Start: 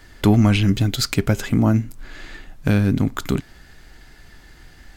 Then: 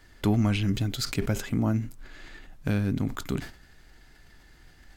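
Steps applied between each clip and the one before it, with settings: sustainer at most 120 dB/s; gain -9 dB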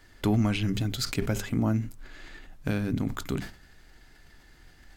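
notches 50/100/150/200 Hz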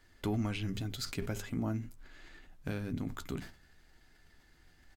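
doubler 12 ms -11 dB; gain -8.5 dB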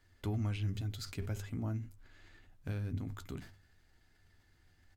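bell 96 Hz +13.5 dB 0.38 oct; gain -6 dB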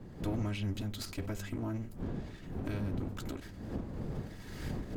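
minimum comb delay 3.1 ms; wind noise 230 Hz -48 dBFS; recorder AGC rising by 33 dB/s; gain +2 dB

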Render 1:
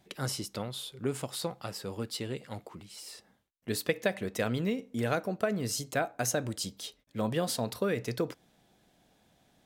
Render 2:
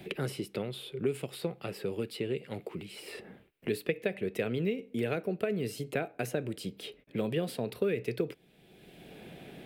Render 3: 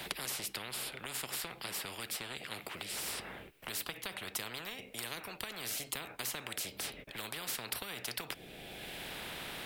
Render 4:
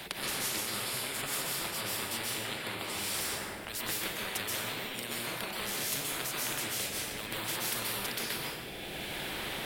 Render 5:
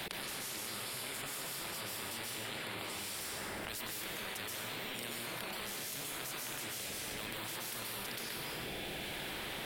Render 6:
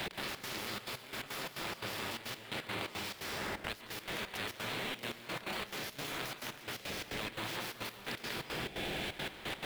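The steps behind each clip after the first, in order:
fifteen-band EQ 160 Hz +7 dB, 400 Hz +12 dB, 1000 Hz -5 dB, 2500 Hz +10 dB, 6300 Hz -11 dB; three-band squash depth 70%; gain -6.5 dB
spectral compressor 10:1; gain +1 dB
plate-style reverb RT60 1.2 s, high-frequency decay 0.85×, pre-delay 0.115 s, DRR -5 dB
level quantiser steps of 24 dB; gain +6 dB
median filter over 5 samples; step gate "x.xx.xxxx.x..x.x" 173 bpm -12 dB; gain +4.5 dB

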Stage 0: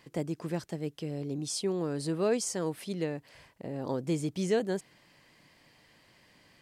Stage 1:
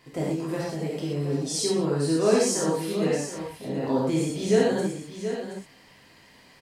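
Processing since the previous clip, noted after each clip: on a send: tapped delay 0.119/0.724 s -16.5/-9.5 dB; on the sum: non-linear reverb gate 0.15 s flat, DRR -6.5 dB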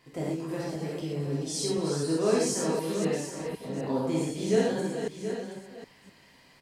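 reverse delay 0.254 s, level -7 dB; gain -4.5 dB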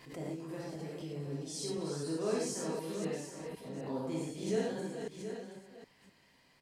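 backwards sustainer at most 96 dB/s; gain -9 dB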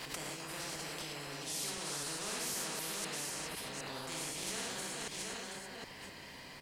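spectral compressor 4:1; gain +1 dB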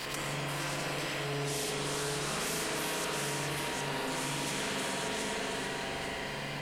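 diffused feedback echo 0.464 s, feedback 47%, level -8 dB; spring tank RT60 1.8 s, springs 42/56 ms, chirp 70 ms, DRR -5.5 dB; fast leveller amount 50%

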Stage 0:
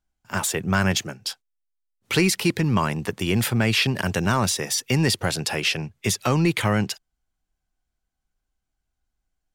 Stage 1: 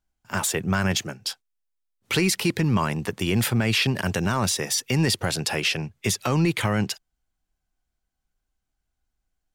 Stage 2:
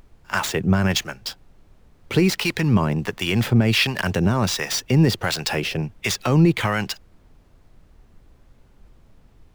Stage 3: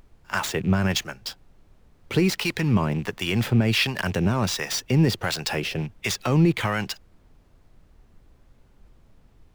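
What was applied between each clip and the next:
limiter -12.5 dBFS, peak gain reduction 4 dB
median filter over 5 samples; harmonic tremolo 1.4 Hz, depth 70%, crossover 690 Hz; added noise brown -56 dBFS; gain +6.5 dB
rattling part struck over -26 dBFS, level -31 dBFS; gain -3 dB

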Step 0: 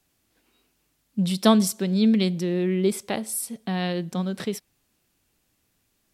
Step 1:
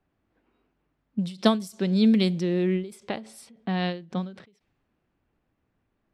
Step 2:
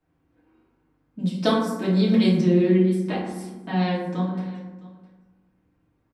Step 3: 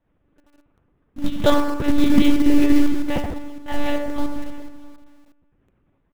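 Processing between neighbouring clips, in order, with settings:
low-pass opened by the level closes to 1500 Hz, open at -17 dBFS; ending taper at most 130 dB/s
echo 0.66 s -20.5 dB; reverb RT60 1.2 s, pre-delay 3 ms, DRR -7.5 dB; gain -4.5 dB
monotone LPC vocoder at 8 kHz 290 Hz; in parallel at -7 dB: companded quantiser 4-bit; on the sum: gain +3 dB

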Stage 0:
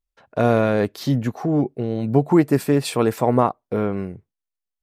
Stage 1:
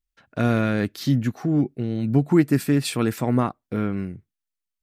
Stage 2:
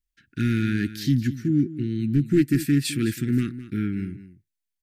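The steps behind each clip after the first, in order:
band shelf 660 Hz -9 dB
hard clip -12.5 dBFS, distortion -18 dB; elliptic band-stop 350–1600 Hz, stop band 40 dB; echo 0.21 s -14.5 dB

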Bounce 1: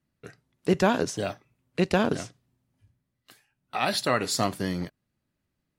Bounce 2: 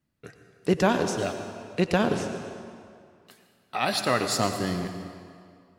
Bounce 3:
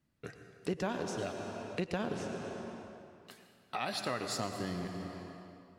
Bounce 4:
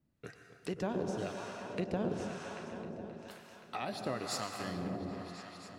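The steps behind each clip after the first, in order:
reverb RT60 2.3 s, pre-delay 87 ms, DRR 7 dB
high shelf 11000 Hz -6.5 dB; compressor 2.5:1, threshold -38 dBFS, peak gain reduction 14 dB
repeats that get brighter 0.263 s, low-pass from 750 Hz, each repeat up 1 oct, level -6 dB; harmonic tremolo 1 Hz, depth 70%, crossover 810 Hz; gain +1.5 dB

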